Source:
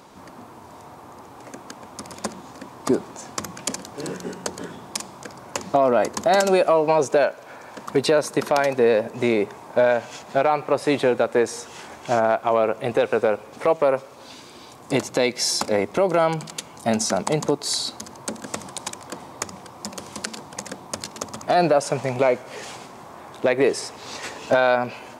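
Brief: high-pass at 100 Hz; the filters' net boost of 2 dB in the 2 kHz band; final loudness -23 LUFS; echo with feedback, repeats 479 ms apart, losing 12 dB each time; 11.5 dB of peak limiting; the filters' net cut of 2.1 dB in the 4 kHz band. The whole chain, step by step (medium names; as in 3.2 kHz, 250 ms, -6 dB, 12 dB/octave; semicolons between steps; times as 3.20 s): high-pass 100 Hz; peaking EQ 2 kHz +3.5 dB; peaking EQ 4 kHz -3.5 dB; peak limiter -17.5 dBFS; feedback delay 479 ms, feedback 25%, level -12 dB; trim +6.5 dB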